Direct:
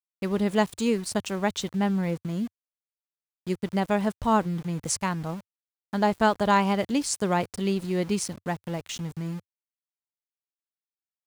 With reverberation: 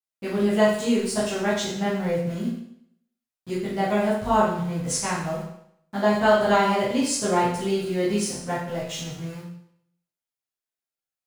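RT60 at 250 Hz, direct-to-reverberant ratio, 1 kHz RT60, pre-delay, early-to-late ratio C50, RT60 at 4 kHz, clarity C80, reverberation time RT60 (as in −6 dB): 0.70 s, −11.0 dB, 0.70 s, 8 ms, 1.5 dB, 0.65 s, 5.5 dB, 0.70 s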